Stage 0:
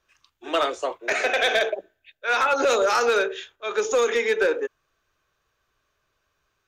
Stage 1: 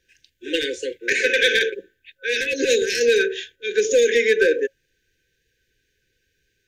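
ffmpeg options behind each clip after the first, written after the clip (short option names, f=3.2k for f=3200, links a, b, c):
-af "afftfilt=real='re*(1-between(b*sr/4096,540,1500))':imag='im*(1-between(b*sr/4096,540,1500))':win_size=4096:overlap=0.75,volume=5dB"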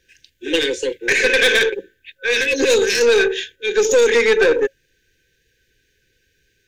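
-af "aeval=exprs='(tanh(5.62*val(0)+0.2)-tanh(0.2))/5.62':c=same,volume=6.5dB"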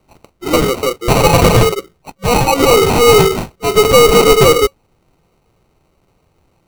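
-af "acrusher=samples=26:mix=1:aa=0.000001,volume=6dB"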